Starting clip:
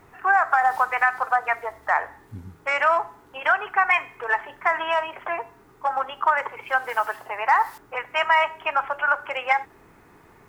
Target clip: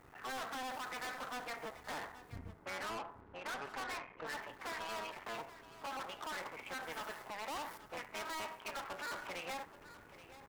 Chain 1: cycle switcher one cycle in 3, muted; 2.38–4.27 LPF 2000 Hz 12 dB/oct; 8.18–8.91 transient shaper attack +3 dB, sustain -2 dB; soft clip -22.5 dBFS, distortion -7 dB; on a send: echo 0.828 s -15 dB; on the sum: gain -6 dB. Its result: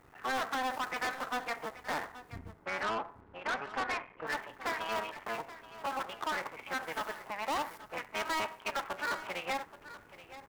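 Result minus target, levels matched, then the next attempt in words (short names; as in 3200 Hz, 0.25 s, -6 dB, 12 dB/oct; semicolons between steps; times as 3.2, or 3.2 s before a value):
soft clip: distortion -5 dB
cycle switcher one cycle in 3, muted; 2.38–4.27 LPF 2000 Hz 12 dB/oct; 8.18–8.91 transient shaper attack +3 dB, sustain -2 dB; soft clip -33 dBFS, distortion -2 dB; on a send: echo 0.828 s -15 dB; on the sum: gain -6 dB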